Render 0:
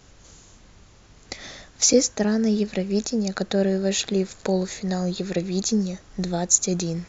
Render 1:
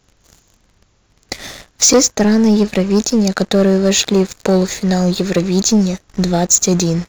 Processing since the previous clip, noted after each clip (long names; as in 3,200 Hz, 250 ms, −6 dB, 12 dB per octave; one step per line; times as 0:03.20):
leveller curve on the samples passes 3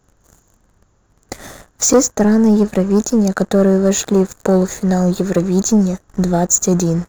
flat-topped bell 3,400 Hz −11 dB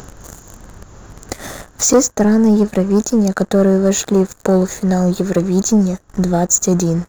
upward compression, threshold −19 dBFS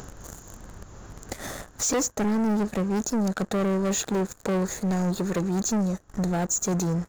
soft clipping −16 dBFS, distortion −10 dB
level −5.5 dB